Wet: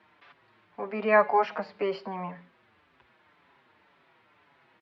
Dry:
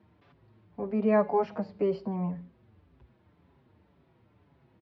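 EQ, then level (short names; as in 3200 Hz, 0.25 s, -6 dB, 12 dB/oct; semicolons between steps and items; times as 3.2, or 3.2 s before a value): band-pass 1600 Hz, Q 0.91; high shelf 2100 Hz +9.5 dB; +9.0 dB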